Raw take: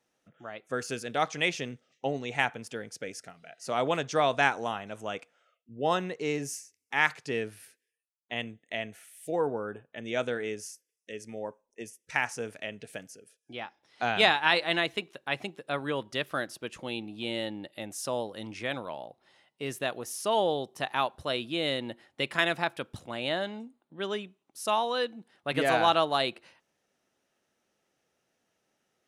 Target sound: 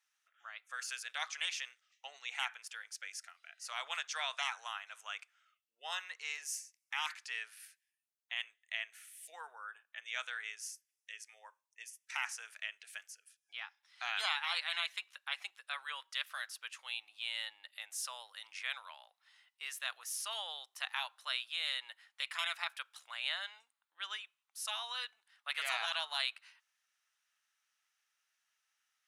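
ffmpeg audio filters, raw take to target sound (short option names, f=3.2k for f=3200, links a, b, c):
-af "highpass=f=1.2k:w=0.5412,highpass=f=1.2k:w=1.3066,afftfilt=real='re*lt(hypot(re,im),0.112)':imag='im*lt(hypot(re,im),0.112)':win_size=1024:overlap=0.75,volume=-2dB"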